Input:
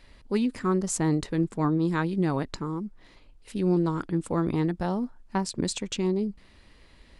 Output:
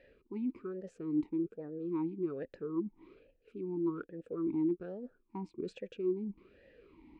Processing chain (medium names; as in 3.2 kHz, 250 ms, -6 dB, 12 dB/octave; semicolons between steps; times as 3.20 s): tilt EQ -3 dB/octave; reverse; compression 10:1, threshold -30 dBFS, peak gain reduction 17 dB; reverse; talking filter e-u 1.2 Hz; trim +8 dB